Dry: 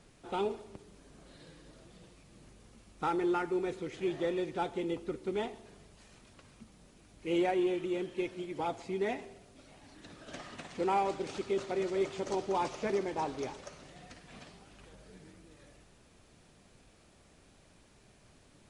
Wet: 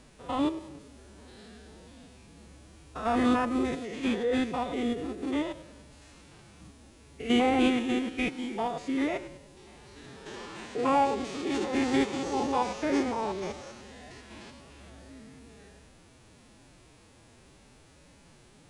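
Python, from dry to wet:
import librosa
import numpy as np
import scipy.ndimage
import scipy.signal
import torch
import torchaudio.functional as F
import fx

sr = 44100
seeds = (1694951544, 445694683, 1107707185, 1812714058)

y = fx.spec_steps(x, sr, hold_ms=100)
y = fx.pitch_keep_formants(y, sr, semitones=6.0)
y = y * 10.0 ** (7.0 / 20.0)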